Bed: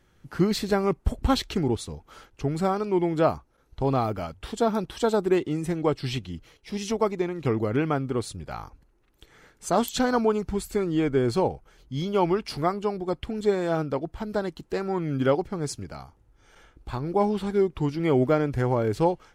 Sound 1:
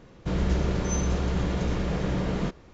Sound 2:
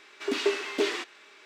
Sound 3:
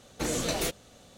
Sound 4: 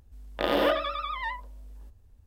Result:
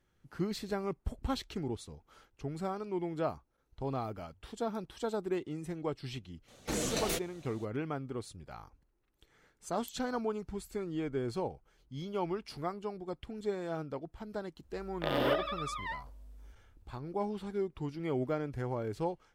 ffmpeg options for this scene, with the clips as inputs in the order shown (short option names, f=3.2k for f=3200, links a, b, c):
-filter_complex "[0:a]volume=-12dB[a];[3:a]atrim=end=1.17,asetpts=PTS-STARTPTS,volume=-4dB,afade=t=in:d=0.004:c=hsin,afade=t=out:st=1.166:d=0.004:c=hsin,adelay=6480[b];[4:a]atrim=end=2.26,asetpts=PTS-STARTPTS,volume=-6.5dB,afade=t=in:d=0.004:c=hsin,afade=t=out:st=2.256:d=0.004:c=hsin,adelay=14630[c];[a][b][c]amix=inputs=3:normalize=0"